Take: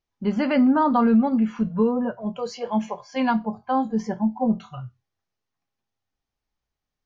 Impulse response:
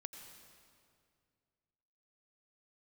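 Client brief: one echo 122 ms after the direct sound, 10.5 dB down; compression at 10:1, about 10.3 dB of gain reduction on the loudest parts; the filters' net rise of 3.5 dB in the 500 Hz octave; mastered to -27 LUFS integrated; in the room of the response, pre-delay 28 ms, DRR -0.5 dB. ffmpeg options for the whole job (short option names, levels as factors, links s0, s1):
-filter_complex "[0:a]equalizer=f=500:t=o:g=4,acompressor=threshold=0.0631:ratio=10,aecho=1:1:122:0.299,asplit=2[s0][s1];[1:a]atrim=start_sample=2205,adelay=28[s2];[s1][s2]afir=irnorm=-1:irlink=0,volume=1.68[s3];[s0][s3]amix=inputs=2:normalize=0,volume=0.841"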